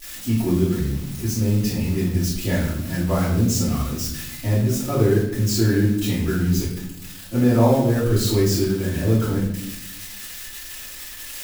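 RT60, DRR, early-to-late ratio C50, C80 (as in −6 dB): 0.80 s, −12.0 dB, 3.5 dB, 7.0 dB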